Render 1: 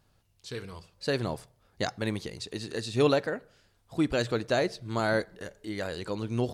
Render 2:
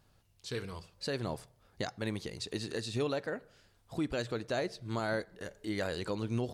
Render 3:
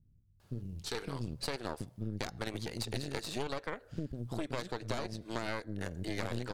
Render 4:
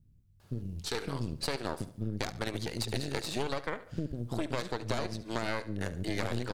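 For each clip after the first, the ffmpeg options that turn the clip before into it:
ffmpeg -i in.wav -af "alimiter=limit=-23.5dB:level=0:latency=1:release=474" out.wav
ffmpeg -i in.wav -filter_complex "[0:a]acrossover=split=260[link_01][link_02];[link_02]adelay=400[link_03];[link_01][link_03]amix=inputs=2:normalize=0,aeval=exprs='0.1*(cos(1*acos(clip(val(0)/0.1,-1,1)))-cos(1*PI/2))+0.0447*(cos(4*acos(clip(val(0)/0.1,-1,1)))-cos(4*PI/2))':channel_layout=same,acompressor=threshold=-36dB:ratio=4,volume=3dB" out.wav
ffmpeg -i in.wav -af "aecho=1:1:71|142|213:0.168|0.0621|0.023,volume=3.5dB" out.wav

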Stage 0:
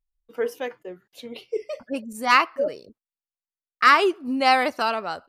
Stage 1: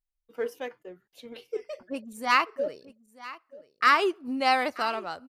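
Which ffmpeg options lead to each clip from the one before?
ffmpeg -i in.wav -filter_complex "[0:a]asplit=2[link_01][link_02];[link_02]aeval=exprs='sgn(val(0))*max(abs(val(0))-0.0224,0)':channel_layout=same,volume=-10.5dB[link_03];[link_01][link_03]amix=inputs=2:normalize=0,aecho=1:1:934:0.119,volume=-7dB" out.wav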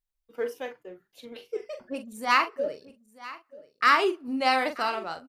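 ffmpeg -i in.wav -filter_complex "[0:a]asplit=2[link_01][link_02];[link_02]adelay=42,volume=-9dB[link_03];[link_01][link_03]amix=inputs=2:normalize=0" out.wav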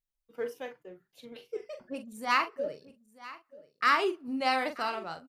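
ffmpeg -i in.wav -af "equalizer=frequency=150:width=2.3:gain=7.5,volume=-4.5dB" out.wav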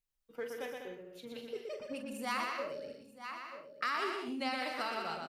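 ffmpeg -i in.wav -filter_complex "[0:a]acrossover=split=1600|3300[link_01][link_02][link_03];[link_01]acompressor=threshold=-39dB:ratio=4[link_04];[link_02]acompressor=threshold=-43dB:ratio=4[link_05];[link_03]acompressor=threshold=-47dB:ratio=4[link_06];[link_04][link_05][link_06]amix=inputs=3:normalize=0,aecho=1:1:120|198|248.7|281.7|303.1:0.631|0.398|0.251|0.158|0.1" out.wav

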